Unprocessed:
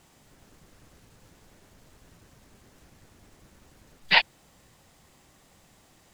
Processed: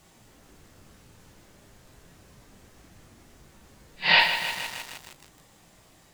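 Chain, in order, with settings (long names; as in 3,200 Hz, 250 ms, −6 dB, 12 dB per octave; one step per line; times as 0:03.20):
random phases in long frames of 200 ms
feedback echo at a low word length 155 ms, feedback 80%, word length 6 bits, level −8.5 dB
level +2.5 dB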